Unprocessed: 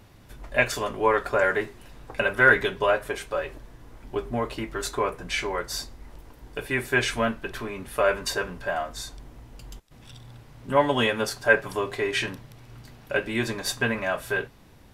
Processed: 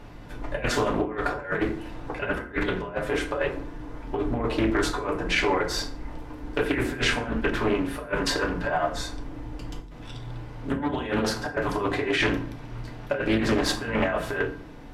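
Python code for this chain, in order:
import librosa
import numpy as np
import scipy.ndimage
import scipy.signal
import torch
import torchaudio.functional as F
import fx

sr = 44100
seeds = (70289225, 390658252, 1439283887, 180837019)

y = fx.octave_divider(x, sr, octaves=2, level_db=-4.0)
y = fx.lowpass(y, sr, hz=2300.0, slope=6)
y = fx.peak_eq(y, sr, hz=86.0, db=-12.0, octaves=0.62)
y = fx.hum_notches(y, sr, base_hz=50, count=6)
y = fx.over_compress(y, sr, threshold_db=-30.0, ratio=-0.5)
y = np.clip(y, -10.0 ** (-17.5 / 20.0), 10.0 ** (-17.5 / 20.0))
y = fx.rev_fdn(y, sr, rt60_s=0.51, lf_ratio=1.4, hf_ratio=0.65, size_ms=20.0, drr_db=2.0)
y = fx.doppler_dist(y, sr, depth_ms=0.35)
y = F.gain(torch.from_numpy(y), 3.0).numpy()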